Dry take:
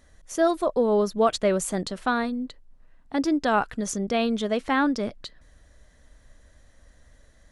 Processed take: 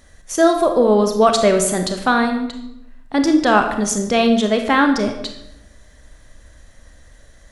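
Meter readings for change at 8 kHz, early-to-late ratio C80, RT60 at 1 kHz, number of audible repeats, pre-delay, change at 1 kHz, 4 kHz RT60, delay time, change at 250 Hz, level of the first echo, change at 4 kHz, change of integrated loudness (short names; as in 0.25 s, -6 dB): +11.0 dB, 10.0 dB, 0.80 s, none, 28 ms, +8.5 dB, 0.60 s, none, +8.5 dB, none, +10.0 dB, +8.5 dB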